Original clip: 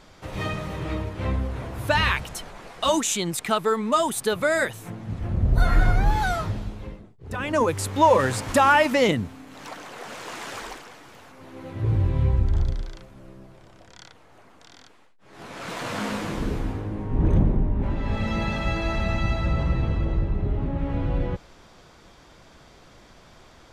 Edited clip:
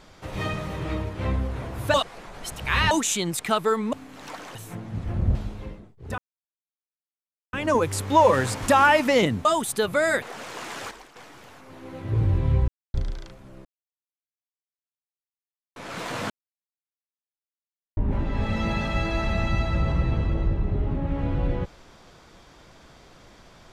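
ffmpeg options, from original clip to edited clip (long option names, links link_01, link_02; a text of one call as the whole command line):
ffmpeg -i in.wav -filter_complex "[0:a]asplit=17[link_01][link_02][link_03][link_04][link_05][link_06][link_07][link_08][link_09][link_10][link_11][link_12][link_13][link_14][link_15][link_16][link_17];[link_01]atrim=end=1.942[link_18];[link_02]atrim=start=1.938:end=2.912,asetpts=PTS-STARTPTS,areverse[link_19];[link_03]atrim=start=2.908:end=3.932[link_20];[link_04]atrim=start=9.308:end=9.932[link_21];[link_05]atrim=start=4.698:end=5.502[link_22];[link_06]atrim=start=6.558:end=7.39,asetpts=PTS-STARTPTS,afade=type=out:start_time=0.828:duration=0.004:curve=hsin,apad=pad_dur=1.35[link_23];[link_07]atrim=start=7.39:end=9.312,asetpts=PTS-STARTPTS,afade=type=in:duration=0.004:curve=hsin[link_24];[link_08]atrim=start=3.928:end=4.702[link_25];[link_09]atrim=start=9.928:end=10.622[link_26];[link_10]atrim=start=10.618:end=10.872,asetpts=PTS-STARTPTS,volume=-9dB[link_27];[link_11]atrim=start=10.868:end=12.39,asetpts=PTS-STARTPTS,afade=type=out:start_time=1.518:duration=0.004:curve=hsin[link_28];[link_12]atrim=start=12.39:end=12.65,asetpts=PTS-STARTPTS,volume=0[link_29];[link_13]atrim=start=12.65:end=13.36,asetpts=PTS-STARTPTS,afade=type=in:duration=0.004:curve=hsin,afade=type=out:start_time=0.706:duration=0.004:curve=hsin[link_30];[link_14]atrim=start=13.36:end=15.47,asetpts=PTS-STARTPTS,volume=0[link_31];[link_15]atrim=start=15.47:end=16.01,asetpts=PTS-STARTPTS,afade=type=in:duration=0.004:curve=hsin,afade=type=out:start_time=0.536:duration=0.004:curve=hsin[link_32];[link_16]atrim=start=16.01:end=17.68,asetpts=PTS-STARTPTS,volume=0[link_33];[link_17]atrim=start=17.68,asetpts=PTS-STARTPTS,afade=type=in:duration=0.004:curve=hsin[link_34];[link_18][link_19]acrossfade=duration=0.004:curve1=hsin:curve2=hsin[link_35];[link_35][link_20]acrossfade=duration=0.004:curve1=hsin:curve2=hsin[link_36];[link_36][link_21]acrossfade=duration=0.004:curve1=hsin:curve2=hsin[link_37];[link_37][link_22]acrossfade=duration=0.004:curve1=hsin:curve2=hsin[link_38];[link_23][link_24]concat=n=2:v=0:a=1[link_39];[link_38][link_39]acrossfade=duration=0.004:curve1=hsin:curve2=hsin[link_40];[link_40][link_25]acrossfade=duration=0.004:curve1=hsin:curve2=hsin[link_41];[link_41][link_26]acrossfade=duration=0.004:curve1=hsin:curve2=hsin[link_42];[link_42][link_27]acrossfade=duration=0.004:curve1=hsin:curve2=hsin[link_43];[link_28][link_29][link_30][link_31][link_32][link_33][link_34]concat=n=7:v=0:a=1[link_44];[link_43][link_44]acrossfade=duration=0.004:curve1=hsin:curve2=hsin" out.wav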